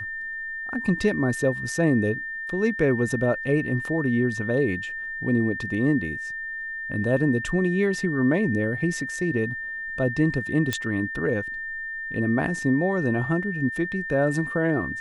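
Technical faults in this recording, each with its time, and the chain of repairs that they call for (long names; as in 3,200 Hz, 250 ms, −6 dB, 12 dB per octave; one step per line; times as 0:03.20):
whistle 1,800 Hz −30 dBFS
0:10.73: click −10 dBFS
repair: click removal
notch filter 1,800 Hz, Q 30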